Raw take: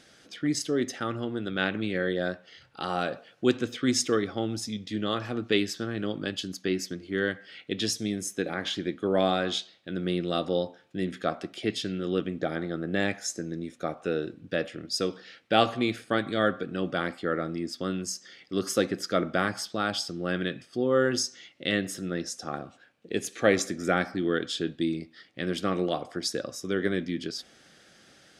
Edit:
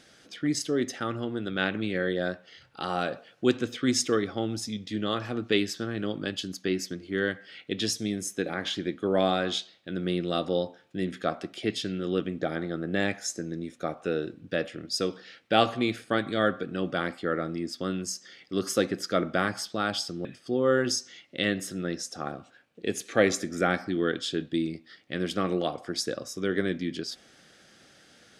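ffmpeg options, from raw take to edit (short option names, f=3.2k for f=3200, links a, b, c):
-filter_complex "[0:a]asplit=2[a][b];[a]atrim=end=20.252[c];[b]atrim=start=20.518[d];[c][d]acrossfade=d=0.004:c1=hsin:c2=hsin"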